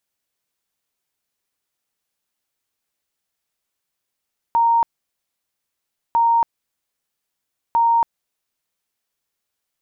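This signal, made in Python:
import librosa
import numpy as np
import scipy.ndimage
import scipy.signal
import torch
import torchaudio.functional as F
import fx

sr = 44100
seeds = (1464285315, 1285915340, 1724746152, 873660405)

y = fx.tone_burst(sr, hz=928.0, cycles=259, every_s=1.6, bursts=3, level_db=-12.5)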